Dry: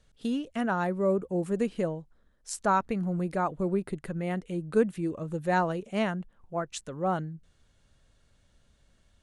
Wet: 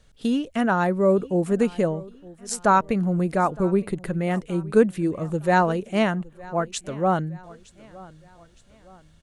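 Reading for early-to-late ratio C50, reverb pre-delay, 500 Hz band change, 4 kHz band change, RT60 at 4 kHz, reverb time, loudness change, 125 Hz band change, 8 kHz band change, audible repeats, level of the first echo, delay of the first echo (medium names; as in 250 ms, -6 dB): no reverb, no reverb, +7.0 dB, +7.0 dB, no reverb, no reverb, +7.0 dB, +7.0 dB, +7.0 dB, 2, -21.5 dB, 914 ms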